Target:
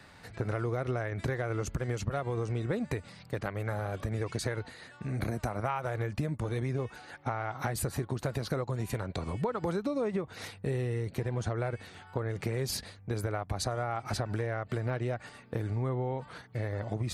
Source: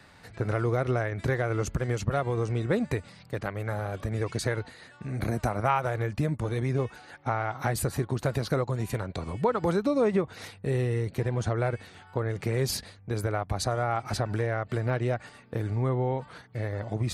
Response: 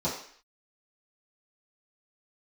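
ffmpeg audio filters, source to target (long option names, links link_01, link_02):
-af "acompressor=threshold=-29dB:ratio=4"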